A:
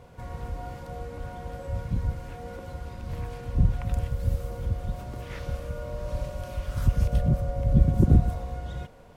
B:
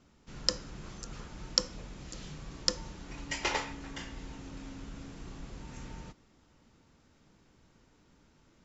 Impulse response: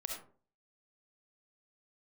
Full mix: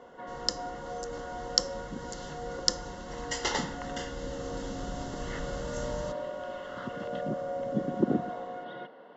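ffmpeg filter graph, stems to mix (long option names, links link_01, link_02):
-filter_complex "[0:a]highpass=frequency=250:width=0.5412,highpass=frequency=250:width=1.3066,lowpass=frequency=3000:width=0.5412,lowpass=frequency=3000:width=1.3066,volume=2.5dB[link_01];[1:a]dynaudnorm=framelen=790:gausssize=3:maxgain=11dB,volume=-4.5dB[link_02];[link_01][link_02]amix=inputs=2:normalize=0,asuperstop=centerf=2400:order=4:qfactor=3.9,highshelf=frequency=4200:gain=5.5"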